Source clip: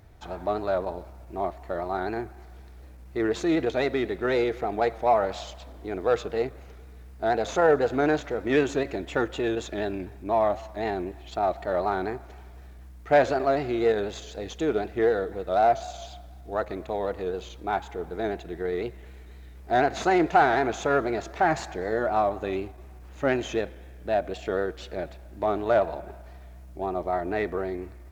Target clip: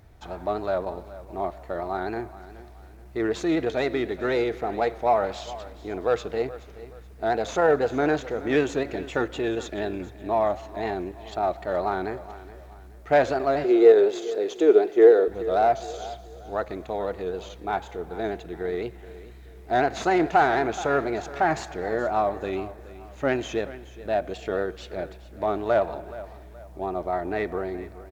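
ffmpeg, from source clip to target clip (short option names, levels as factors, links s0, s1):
-filter_complex "[0:a]asettb=1/sr,asplit=3[s0][s1][s2];[s0]atrim=end=13.644[s3];[s1]atrim=start=13.64:end=15.28,asetpts=PTS-STARTPTS,afade=t=in:d=0.004:c=qsin,afade=t=out:st=1.636:d=0.004:c=qsin,highpass=f=390:t=q:w=3.9[s4];[s2]atrim=start=15.276[s5];[s3][s4]acrossfade=d=0.004:c1=hsin:c2=qsin[s6];[s6][s5]acrossfade=d=0.004:c1=qsin:c2=hsin,aecho=1:1:424|848|1272:0.15|0.0539|0.0194"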